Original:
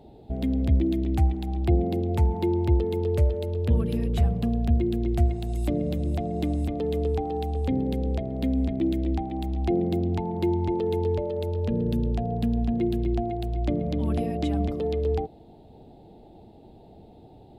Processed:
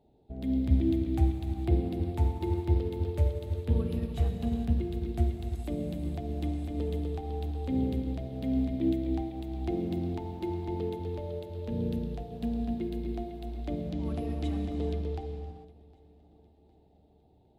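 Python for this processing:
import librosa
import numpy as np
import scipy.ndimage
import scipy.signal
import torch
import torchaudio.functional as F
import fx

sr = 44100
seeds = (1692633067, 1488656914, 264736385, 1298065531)

y = fx.echo_feedback(x, sr, ms=759, feedback_pct=48, wet_db=-17.5)
y = fx.rev_gated(y, sr, seeds[0], gate_ms=480, shape='flat', drr_db=2.5)
y = fx.upward_expand(y, sr, threshold_db=-40.0, expansion=1.5)
y = F.gain(torch.from_numpy(y), -4.0).numpy()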